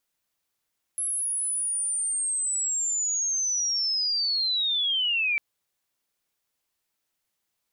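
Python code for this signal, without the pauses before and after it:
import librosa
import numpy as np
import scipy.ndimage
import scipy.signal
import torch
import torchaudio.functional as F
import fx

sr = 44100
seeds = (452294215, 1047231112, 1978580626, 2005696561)

y = fx.chirp(sr, length_s=4.4, from_hz=11000.0, to_hz=2300.0, law='linear', from_db=-25.5, to_db=-22.0)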